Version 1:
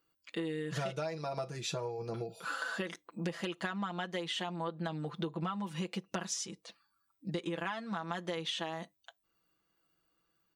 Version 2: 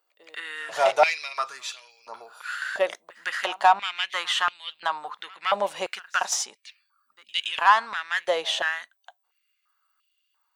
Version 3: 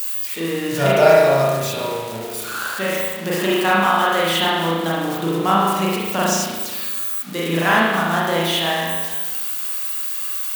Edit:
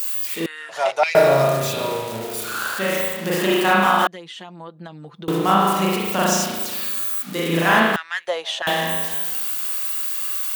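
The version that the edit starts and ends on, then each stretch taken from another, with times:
3
0:00.46–0:01.15: punch in from 2
0:04.07–0:05.28: punch in from 1
0:07.96–0:08.67: punch in from 2

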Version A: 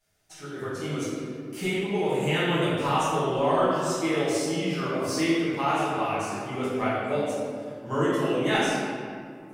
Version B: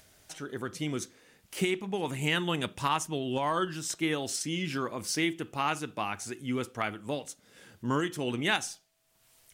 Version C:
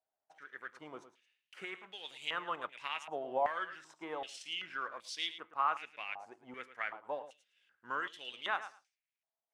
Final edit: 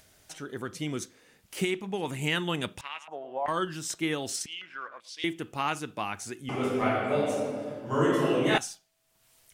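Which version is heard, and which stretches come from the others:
B
0:02.81–0:03.48: punch in from C
0:04.46–0:05.24: punch in from C
0:06.49–0:08.58: punch in from A

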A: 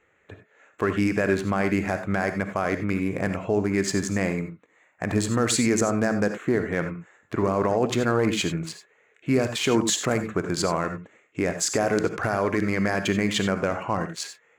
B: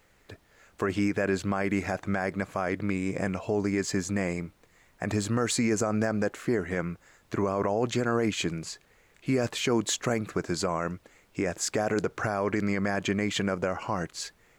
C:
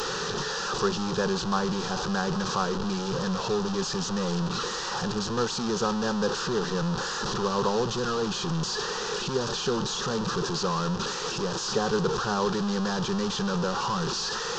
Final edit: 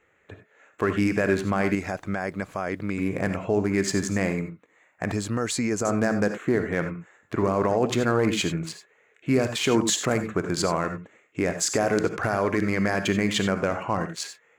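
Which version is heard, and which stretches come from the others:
A
0:01.75–0:02.98: punch in from B
0:05.12–0:05.85: punch in from B
not used: C

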